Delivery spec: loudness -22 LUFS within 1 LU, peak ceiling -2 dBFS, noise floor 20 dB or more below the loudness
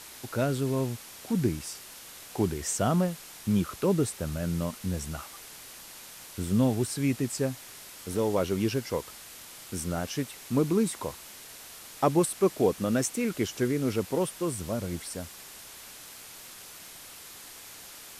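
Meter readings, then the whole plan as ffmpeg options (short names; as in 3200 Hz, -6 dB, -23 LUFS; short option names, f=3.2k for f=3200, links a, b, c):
noise floor -47 dBFS; noise floor target -50 dBFS; loudness -29.5 LUFS; peak -10.0 dBFS; loudness target -22.0 LUFS
-> -af "afftdn=nr=6:nf=-47"
-af "volume=7.5dB"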